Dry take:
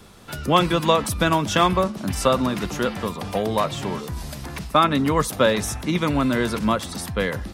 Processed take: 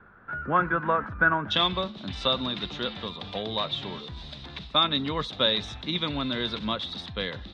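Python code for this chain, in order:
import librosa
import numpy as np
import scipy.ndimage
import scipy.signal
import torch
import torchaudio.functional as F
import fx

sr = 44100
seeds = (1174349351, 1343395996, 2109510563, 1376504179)

y = fx.ladder_lowpass(x, sr, hz=fx.steps((0.0, 1600.0), (1.5, 3900.0)), resonance_pct=80)
y = y * 10.0 ** (2.5 / 20.0)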